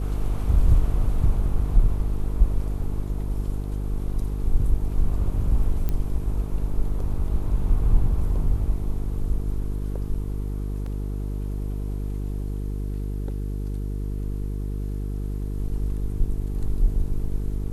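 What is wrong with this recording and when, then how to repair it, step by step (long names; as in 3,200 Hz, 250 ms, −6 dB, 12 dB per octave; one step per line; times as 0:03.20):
mains buzz 50 Hz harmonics 9 −28 dBFS
0:05.89: click −14 dBFS
0:10.86: drop-out 3.5 ms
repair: click removal
hum removal 50 Hz, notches 9
repair the gap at 0:10.86, 3.5 ms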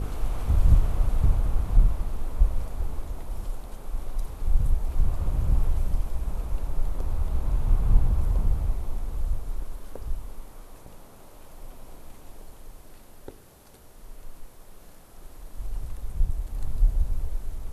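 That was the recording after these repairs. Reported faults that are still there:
none of them is left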